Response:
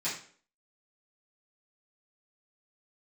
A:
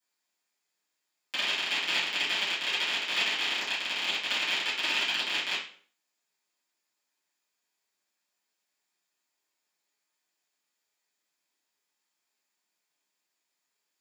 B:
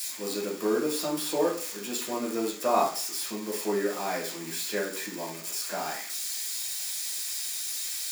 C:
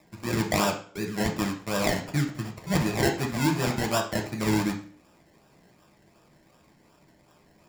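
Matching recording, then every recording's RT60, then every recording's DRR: A; 0.50, 0.50, 0.50 s; -11.0, -3.5, 1.5 dB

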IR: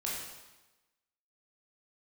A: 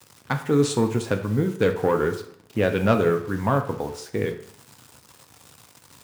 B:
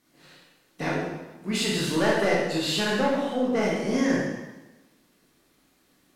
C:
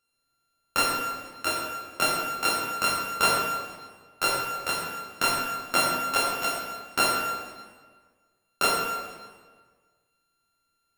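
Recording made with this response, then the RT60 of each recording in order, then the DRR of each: B; 0.60, 1.1, 1.5 s; 5.0, -5.5, -2.5 dB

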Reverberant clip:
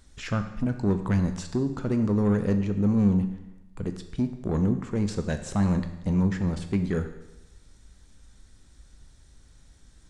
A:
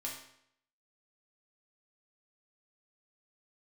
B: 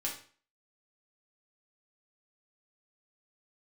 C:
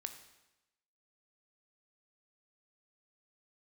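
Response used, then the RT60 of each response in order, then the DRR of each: C; 0.70, 0.45, 0.95 s; -3.5, -3.0, 7.0 dB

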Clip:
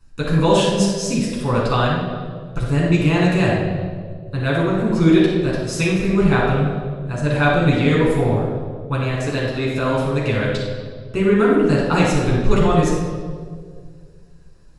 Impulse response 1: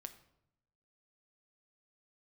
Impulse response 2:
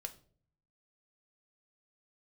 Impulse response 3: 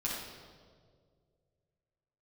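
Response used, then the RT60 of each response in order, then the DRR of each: 3; 0.80, 0.50, 2.0 s; 8.0, 6.5, -5.5 dB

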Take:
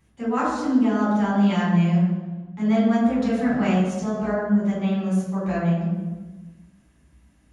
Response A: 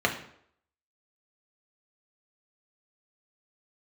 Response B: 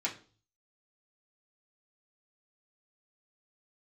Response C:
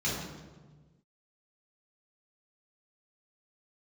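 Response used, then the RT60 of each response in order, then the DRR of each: C; 0.65, 0.40, 1.3 s; 0.5, -6.0, -8.0 dB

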